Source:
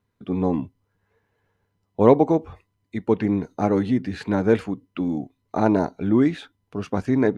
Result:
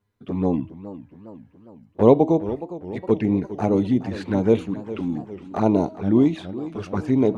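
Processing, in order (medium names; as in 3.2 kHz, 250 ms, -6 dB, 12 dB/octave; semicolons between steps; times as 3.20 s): touch-sensitive flanger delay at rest 9.8 ms, full sweep at -17 dBFS; de-hum 319.4 Hz, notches 14; modulated delay 413 ms, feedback 56%, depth 180 cents, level -14.5 dB; trim +1.5 dB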